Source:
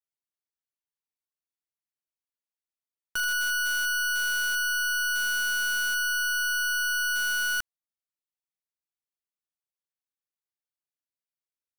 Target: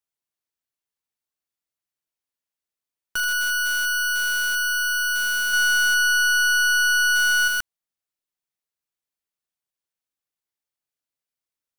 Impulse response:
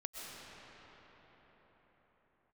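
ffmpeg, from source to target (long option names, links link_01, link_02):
-filter_complex "[0:a]asettb=1/sr,asplit=3[link_01][link_02][link_03];[link_01]atrim=end=5.534[link_04];[link_02]atrim=start=5.53:end=7.48,asetpts=PTS-STARTPTS,afade=type=in:duration=0.004:curve=qsin,afade=type=out:start_time=1.946:duration=0.004:curve=qsin,aecho=1:1:1.4:0.66,atrim=end_sample=85995[link_05];[link_03]atrim=start=7.476[link_06];[link_04][link_05]acrossfade=duration=0.004:curve1=hsin:curve2=qsin[link_07];[link_07][link_06]acrossfade=duration=0.004:curve1=qsin:curve2=hsin,volume=4dB"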